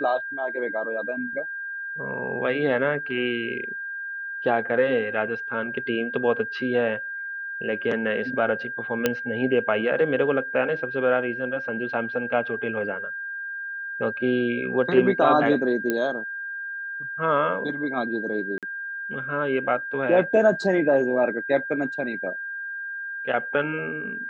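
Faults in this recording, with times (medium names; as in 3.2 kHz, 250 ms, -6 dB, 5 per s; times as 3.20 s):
whine 1.6 kHz -30 dBFS
9.06 s: pop -6 dBFS
15.90 s: pop -11 dBFS
18.58–18.63 s: dropout 47 ms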